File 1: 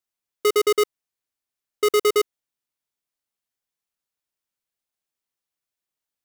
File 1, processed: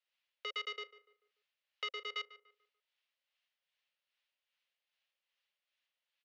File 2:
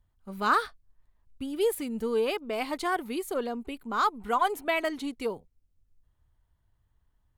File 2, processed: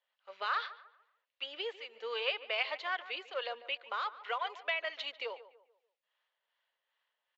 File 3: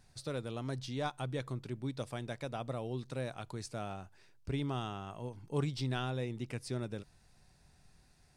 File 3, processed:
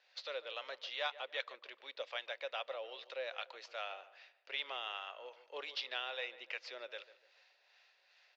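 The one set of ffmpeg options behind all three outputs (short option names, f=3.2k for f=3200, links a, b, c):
-filter_complex "[0:a]aderivative,acompressor=threshold=-46dB:ratio=4,aresample=16000,acrusher=bits=5:mode=log:mix=0:aa=0.000001,aresample=44100,asoftclip=type=hard:threshold=-38.5dB,acrossover=split=630[a][b];[a]aeval=exprs='val(0)*(1-0.5/2+0.5/2*cos(2*PI*2.5*n/s))':c=same[c];[b]aeval=exprs='val(0)*(1-0.5/2-0.5/2*cos(2*PI*2.5*n/s))':c=same[d];[c][d]amix=inputs=2:normalize=0,highpass=f=470:w=0.5412,highpass=f=470:w=1.3066,equalizer=f=540:t=q:w=4:g=10,equalizer=f=1.9k:t=q:w=4:g=3,equalizer=f=2.8k:t=q:w=4:g=4,lowpass=f=3.5k:w=0.5412,lowpass=f=3.5k:w=1.3066,asplit=2[e][f];[f]adelay=146,lowpass=f=2k:p=1,volume=-14.5dB,asplit=2[g][h];[h]adelay=146,lowpass=f=2k:p=1,volume=0.38,asplit=2[i][j];[j]adelay=146,lowpass=f=2k:p=1,volume=0.38,asplit=2[k][l];[l]adelay=146,lowpass=f=2k:p=1,volume=0.38[m];[e][g][i][k][m]amix=inputs=5:normalize=0,volume=16.5dB"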